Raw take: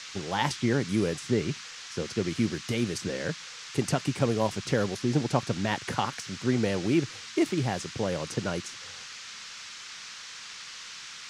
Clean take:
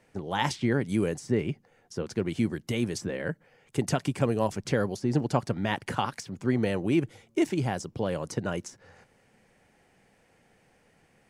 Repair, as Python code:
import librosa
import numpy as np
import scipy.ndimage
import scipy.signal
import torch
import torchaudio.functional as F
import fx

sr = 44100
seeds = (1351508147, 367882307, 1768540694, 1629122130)

y = fx.noise_reduce(x, sr, print_start_s=9.39, print_end_s=9.89, reduce_db=21.0)